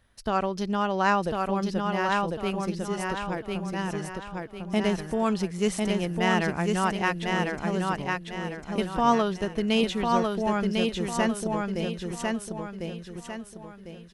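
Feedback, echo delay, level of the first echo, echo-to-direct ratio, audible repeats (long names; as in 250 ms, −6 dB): 38%, 1,050 ms, −3.0 dB, −2.5 dB, 4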